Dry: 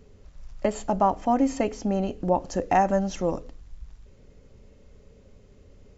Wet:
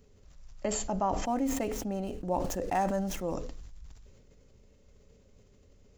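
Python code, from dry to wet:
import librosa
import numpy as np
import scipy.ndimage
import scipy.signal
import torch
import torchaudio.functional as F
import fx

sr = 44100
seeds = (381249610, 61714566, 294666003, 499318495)

y = fx.median_filter(x, sr, points=9, at=(1.25, 3.35))
y = fx.high_shelf(y, sr, hz=5400.0, db=10.5)
y = fx.sustainer(y, sr, db_per_s=36.0)
y = F.gain(torch.from_numpy(y), -9.0).numpy()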